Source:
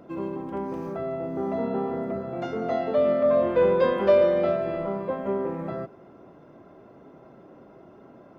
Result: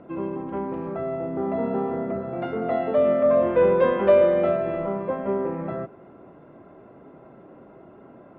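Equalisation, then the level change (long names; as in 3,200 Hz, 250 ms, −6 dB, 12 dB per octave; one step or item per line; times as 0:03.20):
low-pass filter 3,000 Hz 24 dB per octave
+2.0 dB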